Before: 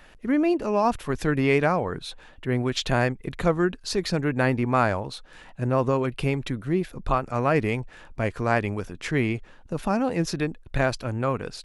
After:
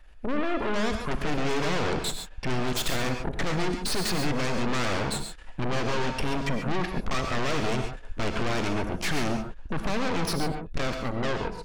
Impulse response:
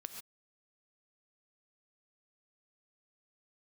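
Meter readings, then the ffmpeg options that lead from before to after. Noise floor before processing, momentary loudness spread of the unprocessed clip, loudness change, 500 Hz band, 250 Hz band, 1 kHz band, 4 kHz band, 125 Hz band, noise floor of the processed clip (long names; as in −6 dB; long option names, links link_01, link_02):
−50 dBFS, 9 LU, −4.0 dB, −5.5 dB, −4.5 dB, −3.5 dB, +3.5 dB, −4.5 dB, −43 dBFS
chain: -filter_complex "[0:a]asplit=2[link_01][link_02];[link_02]aeval=exprs='0.422*sin(PI/2*3.16*val(0)/0.422)':channel_layout=same,volume=-8.5dB[link_03];[link_01][link_03]amix=inputs=2:normalize=0,equalizer=frequency=110:width_type=o:width=0.63:gain=-12.5,dynaudnorm=framelen=170:gausssize=17:maxgain=7dB,asoftclip=type=tanh:threshold=-20dB,afwtdn=0.0282,aeval=exprs='0.158*(cos(1*acos(clip(val(0)/0.158,-1,1)))-cos(1*PI/2))+0.0631*(cos(2*acos(clip(val(0)/0.158,-1,1)))-cos(2*PI/2))+0.0447*(cos(3*acos(clip(val(0)/0.158,-1,1)))-cos(3*PI/2))+0.0794*(cos(4*acos(clip(val(0)/0.158,-1,1)))-cos(4*PI/2))+0.0282*(cos(5*acos(clip(val(0)/0.158,-1,1)))-cos(5*PI/2))':channel_layout=same[link_04];[1:a]atrim=start_sample=2205[link_05];[link_04][link_05]afir=irnorm=-1:irlink=0,volume=1dB"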